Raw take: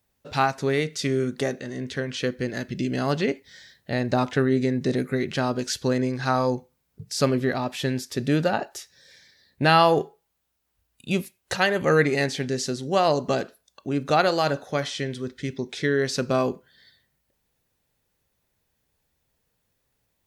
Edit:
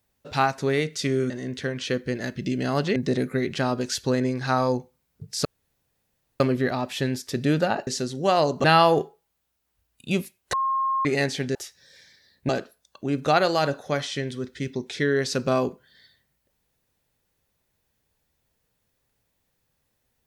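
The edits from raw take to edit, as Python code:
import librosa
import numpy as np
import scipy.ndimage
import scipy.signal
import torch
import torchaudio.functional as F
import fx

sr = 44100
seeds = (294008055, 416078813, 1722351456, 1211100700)

y = fx.edit(x, sr, fx.cut(start_s=1.3, length_s=0.33),
    fx.cut(start_s=3.29, length_s=1.45),
    fx.insert_room_tone(at_s=7.23, length_s=0.95),
    fx.swap(start_s=8.7, length_s=0.94, other_s=12.55, other_length_s=0.77),
    fx.bleep(start_s=11.53, length_s=0.52, hz=1070.0, db=-21.0), tone=tone)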